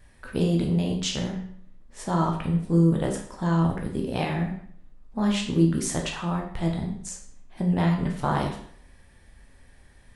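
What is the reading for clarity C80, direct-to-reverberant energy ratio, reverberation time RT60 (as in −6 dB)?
10.0 dB, 0.5 dB, 0.60 s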